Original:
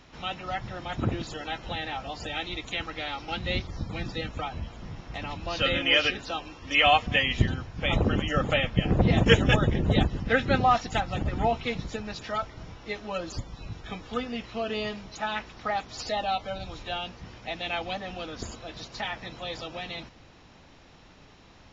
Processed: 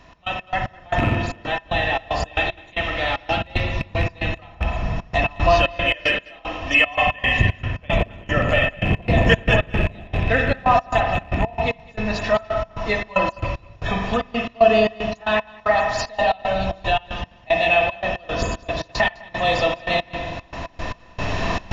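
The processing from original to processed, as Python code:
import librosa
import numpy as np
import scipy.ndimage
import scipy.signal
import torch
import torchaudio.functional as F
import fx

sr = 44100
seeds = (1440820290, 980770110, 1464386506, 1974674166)

p1 = fx.rattle_buzz(x, sr, strikes_db=-28.0, level_db=-23.0)
p2 = fx.recorder_agc(p1, sr, target_db=-14.0, rise_db_per_s=9.4, max_gain_db=30)
p3 = fx.rev_spring(p2, sr, rt60_s=1.5, pass_ms=(42, 52), chirp_ms=80, drr_db=1.5)
p4 = fx.step_gate(p3, sr, bpm=114, pattern='x.x.x..xxx.x.x', floor_db=-24.0, edge_ms=4.5)
p5 = 10.0 ** (-18.5 / 20.0) * np.tanh(p4 / 10.0 ** (-18.5 / 20.0))
p6 = p4 + (p5 * librosa.db_to_amplitude(-8.5))
p7 = fx.low_shelf(p6, sr, hz=110.0, db=7.5)
p8 = fx.small_body(p7, sr, hz=(670.0, 1000.0, 1800.0, 2600.0), ring_ms=40, db=13)
p9 = p8 + fx.echo_single(p8, sr, ms=205, db=-23.5, dry=0)
y = p9 * librosa.db_to_amplitude(-2.5)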